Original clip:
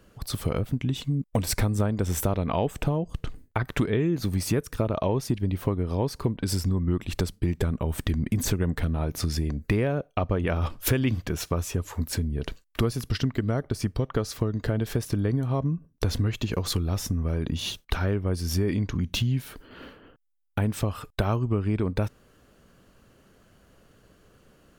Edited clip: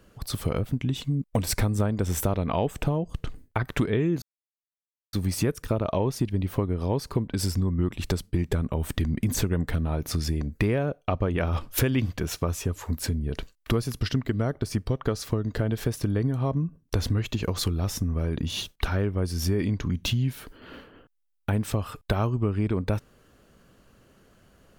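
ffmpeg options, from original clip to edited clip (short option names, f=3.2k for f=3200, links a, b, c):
-filter_complex "[0:a]asplit=2[a][b];[a]atrim=end=4.22,asetpts=PTS-STARTPTS,afade=t=out:st=4.216:d=0.004:c=hsin,apad=pad_dur=0.91[c];[b]atrim=start=4.22,asetpts=PTS-STARTPTS,afade=t=in:d=0.004:c=hsin[d];[c][d]concat=n=2:v=0:a=1"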